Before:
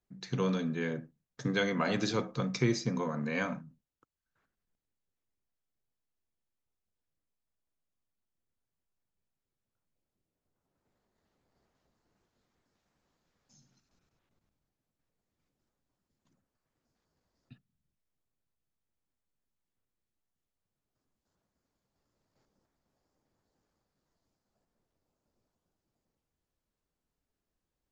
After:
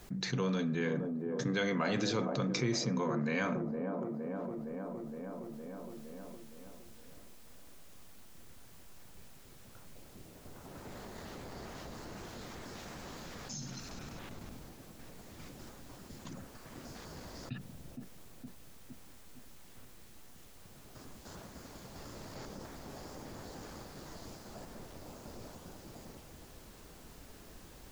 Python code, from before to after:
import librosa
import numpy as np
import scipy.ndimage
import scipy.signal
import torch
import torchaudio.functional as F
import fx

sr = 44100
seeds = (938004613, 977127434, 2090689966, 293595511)

p1 = x + fx.echo_wet_bandpass(x, sr, ms=464, feedback_pct=44, hz=420.0, wet_db=-10.0, dry=0)
p2 = fx.env_flatten(p1, sr, amount_pct=70)
y = p2 * 10.0 ** (-6.5 / 20.0)